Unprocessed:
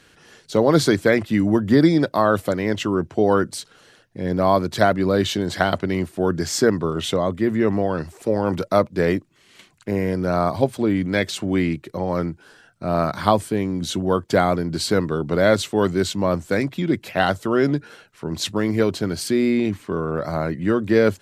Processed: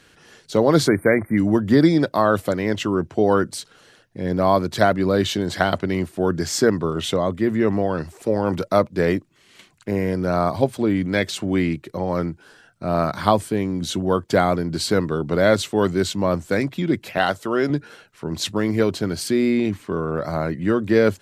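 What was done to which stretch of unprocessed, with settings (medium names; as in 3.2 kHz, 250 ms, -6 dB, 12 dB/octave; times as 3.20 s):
0.88–1.37 s: spectral selection erased 2.4–8.5 kHz
17.18–17.70 s: bass shelf 210 Hz -9 dB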